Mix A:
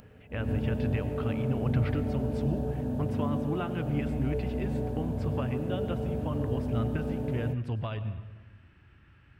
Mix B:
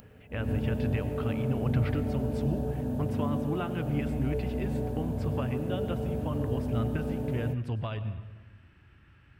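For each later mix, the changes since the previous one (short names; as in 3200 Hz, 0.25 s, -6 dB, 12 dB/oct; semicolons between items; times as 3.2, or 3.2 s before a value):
master: add high shelf 8300 Hz +7 dB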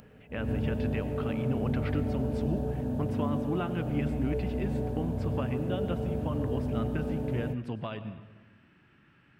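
speech: add resonant low shelf 120 Hz -13 dB, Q 1.5; master: add high shelf 8300 Hz -7 dB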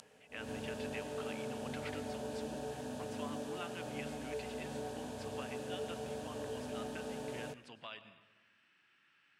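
speech -10.0 dB; master: add weighting filter ITU-R 468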